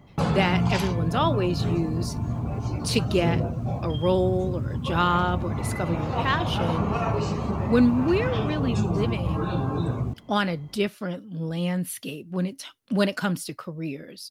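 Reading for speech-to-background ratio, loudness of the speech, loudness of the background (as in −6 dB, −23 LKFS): 1.0 dB, −27.0 LKFS, −28.0 LKFS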